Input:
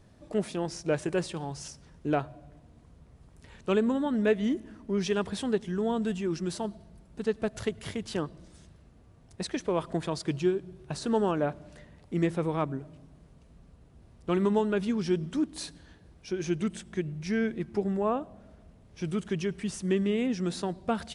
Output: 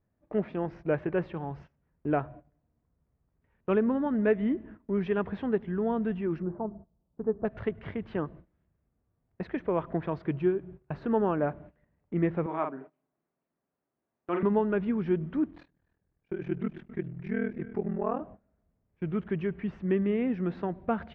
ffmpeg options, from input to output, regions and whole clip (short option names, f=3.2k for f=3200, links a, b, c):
-filter_complex "[0:a]asettb=1/sr,asplit=3[a][b][c];[a]atrim=end=6.424[d];[b]atrim=start=6.42:end=7.45,asetpts=PTS-STARTPTS,afade=t=in:d=0.004:c=qsin,afade=t=out:st=1.026:d=0.004:c=qsin,lowpass=f=1.1k:w=0.5412,lowpass=f=1.1k:w=1.3066,bandreject=f=50:t=h:w=6,bandreject=f=100:t=h:w=6,bandreject=f=150:t=h:w=6,bandreject=f=200:t=h:w=6,bandreject=f=250:t=h:w=6,bandreject=f=300:t=h:w=6,bandreject=f=350:t=h:w=6,bandreject=f=400:t=h:w=6[e];[c]atrim=start=7.446[f];[d][e]acrossfade=d=0.004:c1=hsin:c2=qsin[g];[g][f]acrossfade=d=0.004:c1=qsin:c2=hsin,asettb=1/sr,asplit=3[h][i][j];[h]atrim=end=12.464[k];[i]atrim=start=12.46:end=14.43,asetpts=PTS-STARTPTS,afade=t=in:d=0.004:c=qsin,afade=t=out:st=1.966:d=0.004:c=qsin,highpass=350,bandreject=f=480:w=6.6,asplit=2[l][m];[m]adelay=46,volume=-5dB[n];[l][n]amix=inputs=2:normalize=0,atrim=end_sample=86877[o];[j]atrim=start=14.426[p];[k][o]acrossfade=d=0.004:c1=hsin:c2=qsin[q];[q][p]acrossfade=d=0.004:c1=qsin:c2=hsin,asettb=1/sr,asplit=3[r][s][t];[r]atrim=end=15.514[u];[s]atrim=start=15.51:end=18.2,asetpts=PTS-STARTPTS,afade=t=in:d=0.004:c=qsin,afade=t=out:st=2.686:d=0.004:c=qsin,aecho=1:1:259:0.15,atrim=end_sample=118629,aeval=exprs='val(0)*sin(2*PI*20*n/s)':c=same[v];[t]atrim=start=18.196[w];[u][v]acrossfade=d=0.004:c1=hsin:c2=qsin[x];[x][w]acrossfade=d=0.004:c1=qsin:c2=hsin,lowpass=f=2.2k:w=0.5412,lowpass=f=2.2k:w=1.3066,agate=range=-20dB:threshold=-46dB:ratio=16:detection=peak"